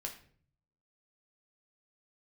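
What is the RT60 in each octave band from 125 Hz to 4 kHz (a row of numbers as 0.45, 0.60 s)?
1.0, 0.75, 0.60, 0.45, 0.45, 0.40 s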